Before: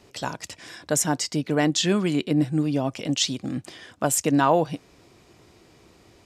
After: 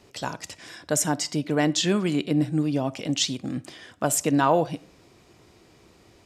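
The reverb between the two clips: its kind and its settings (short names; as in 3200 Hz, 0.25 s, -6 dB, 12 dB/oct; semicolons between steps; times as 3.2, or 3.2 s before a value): digital reverb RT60 0.48 s, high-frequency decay 0.45×, pre-delay 5 ms, DRR 18.5 dB; gain -1 dB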